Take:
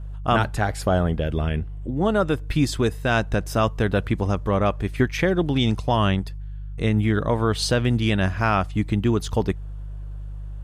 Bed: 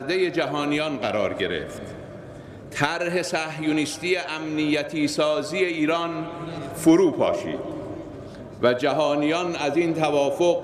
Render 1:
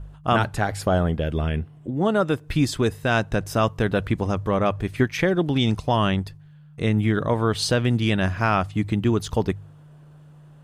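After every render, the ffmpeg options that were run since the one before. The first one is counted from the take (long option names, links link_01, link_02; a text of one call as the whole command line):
ffmpeg -i in.wav -af "bandreject=frequency=50:width_type=h:width=4,bandreject=frequency=100:width_type=h:width=4" out.wav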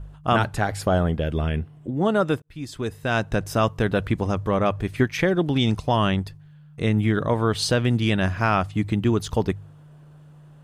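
ffmpeg -i in.wav -filter_complex "[0:a]asplit=2[link_01][link_02];[link_01]atrim=end=2.42,asetpts=PTS-STARTPTS,afade=type=out:start_time=2.416:duration=0.004:curve=hsin[link_03];[link_02]atrim=start=2.42,asetpts=PTS-STARTPTS,afade=type=in:duration=0.9[link_04];[link_03][link_04]concat=n=2:v=0:a=1" out.wav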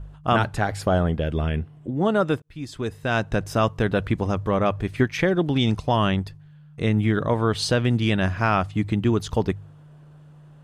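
ffmpeg -i in.wav -af "highshelf=frequency=11000:gain=-8.5" out.wav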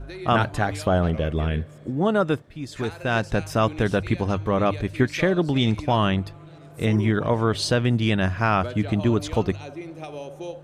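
ffmpeg -i in.wav -i bed.wav -filter_complex "[1:a]volume=-15dB[link_01];[0:a][link_01]amix=inputs=2:normalize=0" out.wav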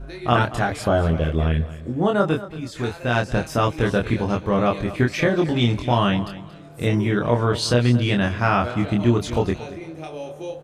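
ffmpeg -i in.wav -filter_complex "[0:a]asplit=2[link_01][link_02];[link_02]adelay=25,volume=-3dB[link_03];[link_01][link_03]amix=inputs=2:normalize=0,aecho=1:1:229|458:0.168|0.0403" out.wav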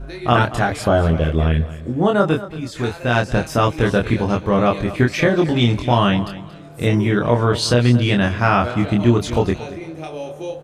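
ffmpeg -i in.wav -af "volume=3.5dB,alimiter=limit=-2dB:level=0:latency=1" out.wav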